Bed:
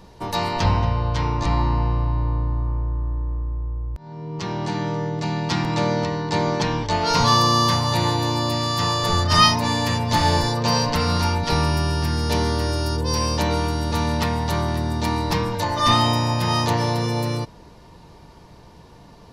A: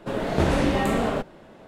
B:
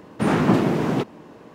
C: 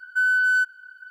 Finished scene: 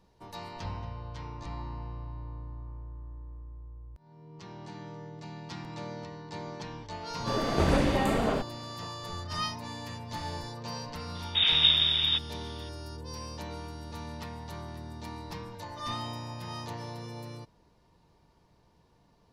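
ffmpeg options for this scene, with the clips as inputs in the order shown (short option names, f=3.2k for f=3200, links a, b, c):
-filter_complex "[0:a]volume=-18.5dB[a];[1:a]aphaser=in_gain=1:out_gain=1:delay=4:decay=0.3:speed=1.8:type=sinusoidal[b];[2:a]lowpass=f=3.3k:t=q:w=0.5098,lowpass=f=3.3k:t=q:w=0.6013,lowpass=f=3.3k:t=q:w=0.9,lowpass=f=3.3k:t=q:w=2.563,afreqshift=-3900[c];[b]atrim=end=1.67,asetpts=PTS-STARTPTS,volume=-4.5dB,afade=t=in:d=0.004:c=hsin,afade=t=out:st=1.666:d=0.004:c=hsin,adelay=7200[d];[c]atrim=end=1.54,asetpts=PTS-STARTPTS,volume=-5dB,afade=t=in:d=0.004:c=hsin,afade=t=out:st=1.536:d=0.004:c=hsin,adelay=11150[e];[a][d][e]amix=inputs=3:normalize=0"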